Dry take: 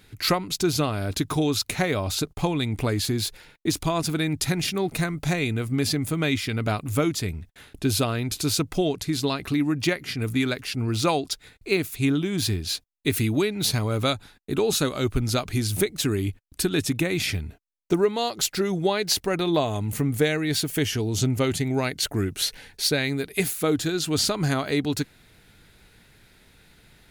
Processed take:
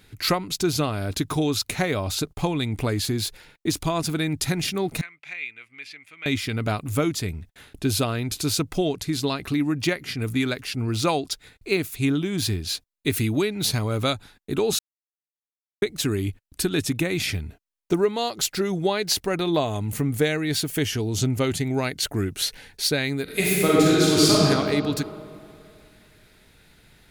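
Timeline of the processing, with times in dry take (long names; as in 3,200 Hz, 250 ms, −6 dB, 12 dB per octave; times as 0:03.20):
0:05.01–0:06.26: resonant band-pass 2,300 Hz, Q 4.2
0:14.79–0:15.82: silence
0:23.23–0:24.37: thrown reverb, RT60 2.5 s, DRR −6 dB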